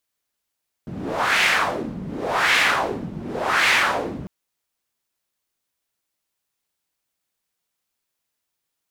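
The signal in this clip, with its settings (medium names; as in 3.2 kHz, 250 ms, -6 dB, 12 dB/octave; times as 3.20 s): wind-like swept noise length 3.40 s, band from 180 Hz, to 2.2 kHz, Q 2.1, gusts 3, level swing 15 dB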